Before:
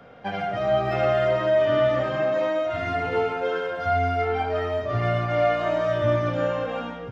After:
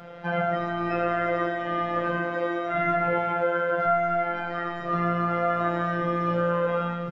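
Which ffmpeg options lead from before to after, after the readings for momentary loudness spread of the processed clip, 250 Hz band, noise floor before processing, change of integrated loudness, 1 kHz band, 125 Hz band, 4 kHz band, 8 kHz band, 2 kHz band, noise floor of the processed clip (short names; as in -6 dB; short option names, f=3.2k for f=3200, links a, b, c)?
4 LU, +2.5 dB, -35 dBFS, -2.0 dB, +1.0 dB, -4.0 dB, -7.0 dB, n/a, +1.0 dB, -33 dBFS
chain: -filter_complex "[0:a]asplit=2[a][b];[b]alimiter=limit=-22.5dB:level=0:latency=1,volume=3dB[c];[a][c]amix=inputs=2:normalize=0,asplit=2[d][e];[e]adelay=12,volume=-7dB[f];[d][f]amix=inputs=2:normalize=0,acrossover=split=2700[g][h];[h]acompressor=threshold=-52dB:ratio=4:attack=1:release=60[i];[g][i]amix=inputs=2:normalize=0,afftfilt=real='hypot(re,im)*cos(PI*b)':imag='0':win_size=1024:overlap=0.75"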